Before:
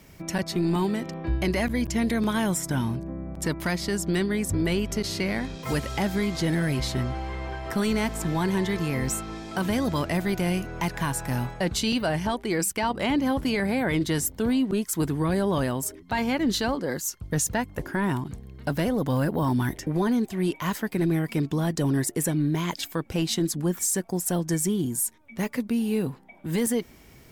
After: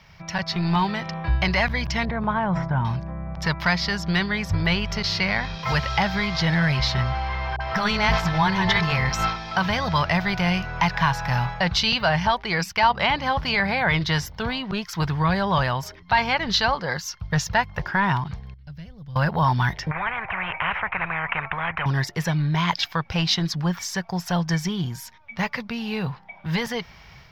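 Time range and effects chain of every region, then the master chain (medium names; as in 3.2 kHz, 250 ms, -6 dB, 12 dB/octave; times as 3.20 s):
2.05–2.85 s: low-pass 1.1 kHz + decay stretcher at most 59 dB/s
7.56–9.36 s: hum notches 50/100/150/200/250/300/350/400 Hz + transient shaper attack +2 dB, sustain +12 dB + phase dispersion highs, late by 44 ms, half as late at 590 Hz
18.54–19.16 s: amplifier tone stack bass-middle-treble 10-0-1 + band-stop 3.8 kHz, Q 27
19.91–21.86 s: elliptic low-pass 2.3 kHz, stop band 50 dB + spectrum-flattening compressor 4:1
whole clip: FFT filter 170 Hz 0 dB, 280 Hz -18 dB, 870 Hz +5 dB, 5.4 kHz +3 dB, 8.8 kHz -28 dB, 13 kHz -16 dB; level rider gain up to 5 dB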